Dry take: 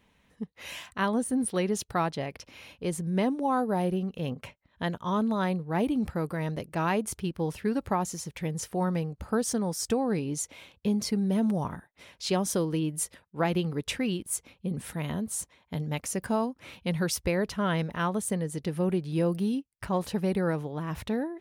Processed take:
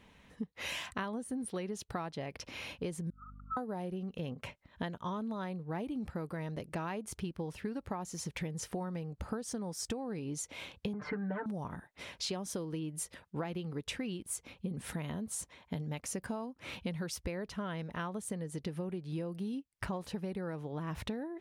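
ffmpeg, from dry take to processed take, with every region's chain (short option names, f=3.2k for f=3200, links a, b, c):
-filter_complex "[0:a]asettb=1/sr,asplit=3[a][b][c];[a]atrim=end=3.104[d];[b]atrim=start=3.1:end=3.57,asetpts=PTS-STARTPTS,afade=t=in:d=0.004:c=qsin,afade=t=out:st=0.466:d=0.004:c=qsin,asuperpass=centerf=1300:order=12:qfactor=6,aeval=exprs='val(0)+0.00178*(sin(2*PI*50*n/s)+sin(2*PI*2*50*n/s)/2+sin(2*PI*3*50*n/s)/3+sin(2*PI*4*50*n/s)/4+sin(2*PI*5*50*n/s)/5)':c=same[e];[c]atrim=start=3.566[f];[d][e]acrossfade=d=0.004:c1=hsin:c2=qsin[g];[g][f]acrossfade=d=0.004:c1=qsin:c2=hsin,asettb=1/sr,asplit=3[h][i][j];[h]atrim=end=10.934[k];[i]atrim=start=10.93:end=11.46,asetpts=PTS-STARTPTS,afade=t=in:d=0.004:c=qsin,afade=t=out:st=0.526:d=0.004:c=qsin,lowpass=f=1.6k:t=q:w=5.6,equalizer=f=1.1k:t=o:w=1.6:g=8,aecho=1:1:6.7:0.99,atrim=end_sample=23373[l];[j]atrim=start=11.456[m];[k][l]acrossfade=d=0.004:c1=hsin:c2=qsin[n];[n][m]acrossfade=d=0.004:c1=qsin:c2=hsin,highshelf=f=12k:g=-10,acompressor=threshold=-40dB:ratio=12,volume=5dB"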